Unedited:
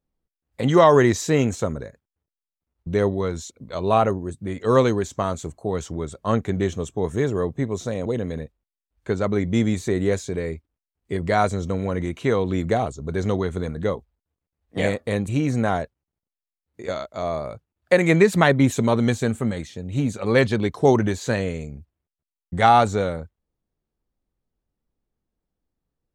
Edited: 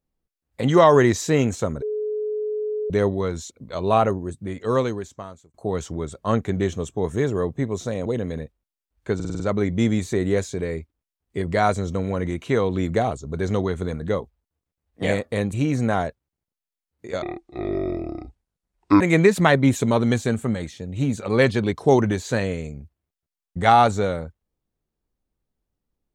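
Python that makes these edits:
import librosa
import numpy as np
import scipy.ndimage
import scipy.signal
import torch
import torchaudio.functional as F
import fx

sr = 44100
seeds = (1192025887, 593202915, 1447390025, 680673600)

y = fx.edit(x, sr, fx.bleep(start_s=1.82, length_s=1.08, hz=425.0, db=-23.0),
    fx.fade_out_span(start_s=4.3, length_s=1.24),
    fx.stutter(start_s=9.15, slice_s=0.05, count=6),
    fx.speed_span(start_s=16.97, length_s=1.0, speed=0.56), tone=tone)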